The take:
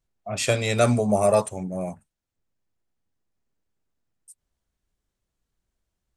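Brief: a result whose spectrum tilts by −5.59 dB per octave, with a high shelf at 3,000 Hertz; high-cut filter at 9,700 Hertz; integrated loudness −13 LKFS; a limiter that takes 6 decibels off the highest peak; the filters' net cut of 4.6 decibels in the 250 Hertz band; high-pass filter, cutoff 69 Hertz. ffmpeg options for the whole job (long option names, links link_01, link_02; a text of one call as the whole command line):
ffmpeg -i in.wav -af "highpass=69,lowpass=9700,equalizer=frequency=250:width_type=o:gain=-5.5,highshelf=frequency=3000:gain=-7.5,volume=14dB,alimiter=limit=-0.5dB:level=0:latency=1" out.wav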